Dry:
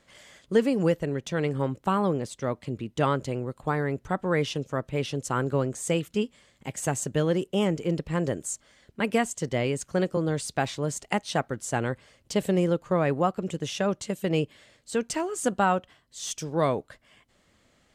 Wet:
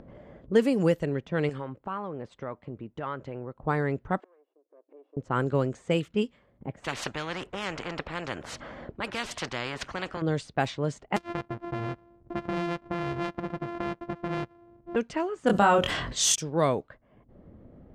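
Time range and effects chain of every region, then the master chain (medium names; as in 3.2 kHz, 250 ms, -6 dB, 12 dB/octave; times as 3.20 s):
1.49–3.58 s: compression 12:1, threshold -26 dBFS + tilt shelf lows -7.5 dB, about 850 Hz
4.20–5.17 s: comb filter that takes the minimum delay 1.8 ms + inverted gate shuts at -33 dBFS, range -35 dB + brick-wall FIR high-pass 270 Hz
6.84–10.22 s: bass shelf 110 Hz -7.5 dB + band-stop 430 Hz, Q 10 + spectrum-flattening compressor 4:1
11.16–14.96 s: sorted samples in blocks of 128 samples + compression 4:1, threshold -27 dBFS
15.47–16.36 s: doubling 24 ms -3 dB + level flattener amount 70%
whole clip: level-controlled noise filter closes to 430 Hz, open at -20.5 dBFS; upward compressor, threshold -35 dBFS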